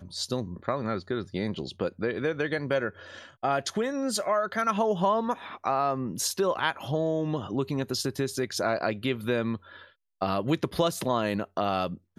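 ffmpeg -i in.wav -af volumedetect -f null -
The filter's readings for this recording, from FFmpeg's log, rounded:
mean_volume: -29.1 dB
max_volume: -11.4 dB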